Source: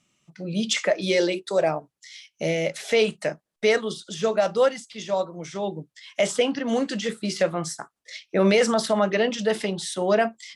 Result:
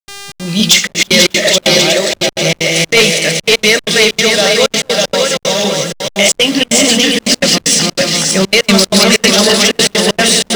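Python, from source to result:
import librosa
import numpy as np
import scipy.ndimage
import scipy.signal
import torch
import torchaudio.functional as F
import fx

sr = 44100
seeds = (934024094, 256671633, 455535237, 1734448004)

p1 = fx.reverse_delay_fb(x, sr, ms=297, feedback_pct=62, wet_db=-0.5)
p2 = fx.bass_treble(p1, sr, bass_db=11, treble_db=10)
p3 = fx.rev_freeverb(p2, sr, rt60_s=4.1, hf_ratio=0.35, predelay_ms=70, drr_db=15.0)
p4 = fx.dmg_buzz(p3, sr, base_hz=400.0, harmonics=29, level_db=-43.0, tilt_db=0, odd_only=False)
p5 = fx.weighting(p4, sr, curve='D')
p6 = p5 + fx.echo_single(p5, sr, ms=489, db=-7.0, dry=0)
p7 = 10.0 ** (-8.0 / 20.0) * np.tanh(p6 / 10.0 ** (-8.0 / 20.0))
p8 = fx.step_gate(p7, sr, bpm=190, pattern='.xxx.xxxxxx.x.xx', floor_db=-24.0, edge_ms=4.5)
p9 = fx.backlash(p8, sr, play_db=-30.0)
y = F.gain(torch.from_numpy(p9), 7.0).numpy()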